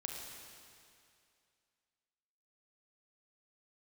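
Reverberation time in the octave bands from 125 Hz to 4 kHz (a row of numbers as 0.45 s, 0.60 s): 2.3 s, 2.3 s, 2.4 s, 2.4 s, 2.4 s, 2.3 s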